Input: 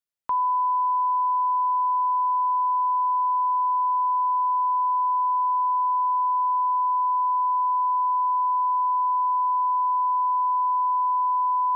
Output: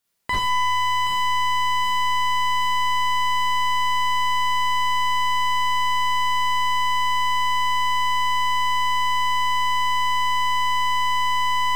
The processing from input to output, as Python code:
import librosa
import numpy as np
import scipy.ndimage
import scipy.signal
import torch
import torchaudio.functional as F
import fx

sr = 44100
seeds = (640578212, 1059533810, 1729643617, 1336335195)

y = fx.self_delay(x, sr, depth_ms=0.37)
y = fx.rider(y, sr, range_db=4, speed_s=0.5)
y = fx.echo_feedback(y, sr, ms=773, feedback_pct=42, wet_db=-16.5)
y = fx.rev_schroeder(y, sr, rt60_s=0.33, comb_ms=32, drr_db=-4.0)
y = fx.slew_limit(y, sr, full_power_hz=49.0)
y = F.gain(torch.from_numpy(y), 9.0).numpy()